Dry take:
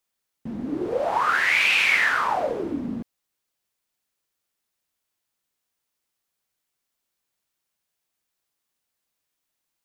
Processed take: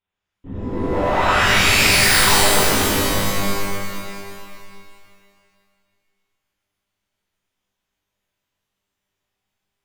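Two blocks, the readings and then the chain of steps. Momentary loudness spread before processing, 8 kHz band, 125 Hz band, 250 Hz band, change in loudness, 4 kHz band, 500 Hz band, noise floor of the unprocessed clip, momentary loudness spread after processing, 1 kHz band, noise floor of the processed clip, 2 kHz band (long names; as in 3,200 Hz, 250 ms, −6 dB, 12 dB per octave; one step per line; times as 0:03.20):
16 LU, +21.5 dB, +18.5 dB, +7.0 dB, +5.5 dB, +12.0 dB, +7.0 dB, −81 dBFS, 19 LU, +6.0 dB, −81 dBFS, +3.5 dB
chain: wavefolder on the positive side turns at −20.5 dBFS
linear-prediction vocoder at 8 kHz whisper
reverb with rising layers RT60 2.2 s, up +12 semitones, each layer −2 dB, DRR −7.5 dB
level −3 dB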